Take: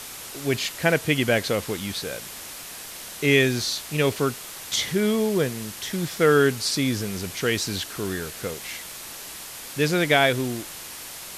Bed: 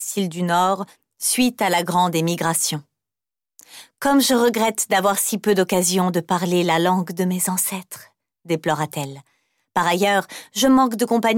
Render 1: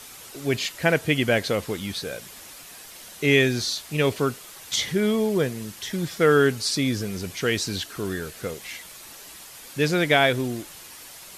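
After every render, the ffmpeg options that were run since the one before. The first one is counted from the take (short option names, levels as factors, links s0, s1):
-af "afftdn=nr=7:nf=-39"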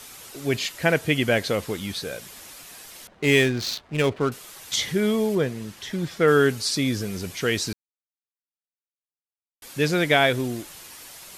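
-filter_complex "[0:a]asettb=1/sr,asplit=3[s0][s1][s2];[s0]atrim=end=3.074[s3];[s1]atrim=start=3.07:end=4.32,asetpts=PTS-STARTPTS,afade=t=in:d=0.004:c=qsin,afade=t=out:st=1.246:d=0.004:c=qsin,adynamicsmooth=sensitivity=5.5:basefreq=880[s4];[s2]atrim=start=4.316[s5];[s3][s4]acrossfade=d=0.004:c1=hsin:c2=qsin[s6];[s6][s5]acrossfade=d=0.004:c1=qsin:c2=hsin,asettb=1/sr,asplit=3[s7][s8][s9];[s7]atrim=end=5.354[s10];[s8]atrim=start=5.35:end=6.28,asetpts=PTS-STARTPTS,afade=t=in:d=0.004:c=qsin,afade=t=out:st=0.926:d=0.004:c=qsin,highshelf=f=6200:g=-10[s11];[s9]atrim=start=6.276[s12];[s10][s11]acrossfade=d=0.004:c1=hsin:c2=qsin[s13];[s13][s12]acrossfade=d=0.004:c1=qsin:c2=hsin,asplit=3[s14][s15][s16];[s14]atrim=end=7.73,asetpts=PTS-STARTPTS,afade=t=out:st=7.726:d=0.004:c=hsin[s17];[s15]atrim=start=7.73:end=9.62,asetpts=PTS-STARTPTS,volume=0[s18];[s16]atrim=start=9.62,asetpts=PTS-STARTPTS,afade=t=in:d=0.004:c=hsin[s19];[s17][s18][s19]concat=n=3:v=0:a=1"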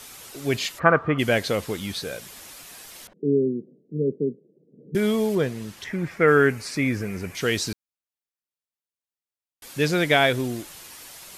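-filter_complex "[0:a]asplit=3[s0][s1][s2];[s0]afade=t=out:st=0.78:d=0.02[s3];[s1]lowpass=f=1200:t=q:w=14,afade=t=in:st=0.78:d=0.02,afade=t=out:st=1.18:d=0.02[s4];[s2]afade=t=in:st=1.18:d=0.02[s5];[s3][s4][s5]amix=inputs=3:normalize=0,asettb=1/sr,asplit=3[s6][s7][s8];[s6]atrim=end=3.134[s9];[s7]atrim=start=3.13:end=4.95,asetpts=PTS-STARTPTS,afade=t=in:d=0.004:c=qsin,afade=t=out:st=1.816:d=0.004:c=qsin,asuperpass=centerf=260:order=12:qfactor=0.78[s10];[s8]atrim=start=4.946[s11];[s9][s10]acrossfade=d=0.004:c1=hsin:c2=qsin[s12];[s12][s11]acrossfade=d=0.004:c1=qsin:c2=hsin,asettb=1/sr,asplit=3[s13][s14][s15];[s13]atrim=end=5.844[s16];[s14]atrim=start=5.84:end=7.35,asetpts=PTS-STARTPTS,afade=t=in:d=0.004:c=qsin,afade=t=out:st=1.506:d=0.004:c=qsin,highshelf=f=2800:t=q:w=3:g=-7[s17];[s15]atrim=start=7.346[s18];[s16][s17]acrossfade=d=0.004:c1=hsin:c2=qsin[s19];[s19][s18]acrossfade=d=0.004:c1=qsin:c2=hsin"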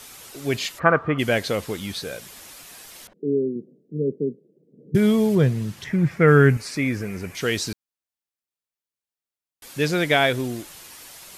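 -filter_complex "[0:a]asettb=1/sr,asplit=3[s0][s1][s2];[s0]atrim=end=3.144[s3];[s1]atrim=start=3.14:end=3.56,asetpts=PTS-STARTPTS,afade=t=in:d=0.004:c=qsin,afade=t=out:st=0.416:d=0.004:c=qsin,lowshelf=f=130:g=-10.5[s4];[s2]atrim=start=3.556[s5];[s3][s4]acrossfade=d=0.004:c1=hsin:c2=qsin[s6];[s6][s5]acrossfade=d=0.004:c1=qsin:c2=hsin,asettb=1/sr,asplit=3[s7][s8][s9];[s7]atrim=end=4.944[s10];[s8]atrim=start=4.94:end=6.57,asetpts=PTS-STARTPTS,afade=t=in:d=0.004:c=qsin,afade=t=out:st=1.626:d=0.004:c=qsin,equalizer=f=130:w=1.1:g=13[s11];[s9]atrim=start=6.566[s12];[s10][s11]acrossfade=d=0.004:c1=hsin:c2=qsin[s13];[s13][s12]acrossfade=d=0.004:c1=qsin:c2=hsin"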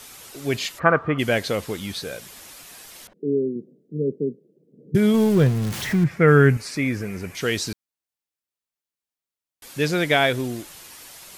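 -filter_complex "[0:a]asettb=1/sr,asplit=3[s0][s1][s2];[s0]atrim=end=5.144[s3];[s1]atrim=start=5.14:end=6.04,asetpts=PTS-STARTPTS,afade=t=in:d=0.004:c=qsin,afade=t=out:st=0.896:d=0.004:c=qsin,aeval=exprs='val(0)+0.5*0.0473*sgn(val(0))':c=same[s4];[s2]atrim=start=6.036[s5];[s3][s4]acrossfade=d=0.004:c1=hsin:c2=qsin[s6];[s6][s5]acrossfade=d=0.004:c1=qsin:c2=hsin"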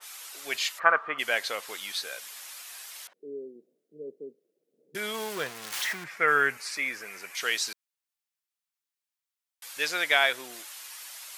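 -af "highpass=1000,adynamicequalizer=threshold=0.0158:dfrequency=2100:dqfactor=0.7:tfrequency=2100:tqfactor=0.7:attack=5:release=100:ratio=0.375:range=1.5:mode=cutabove:tftype=highshelf"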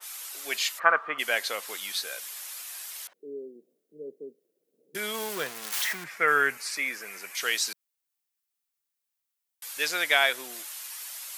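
-af "highpass=f=140:w=0.5412,highpass=f=140:w=1.3066,highshelf=f=9100:g=8.5"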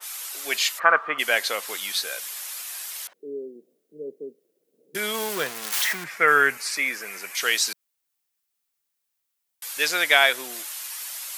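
-af "volume=1.78,alimiter=limit=0.794:level=0:latency=1"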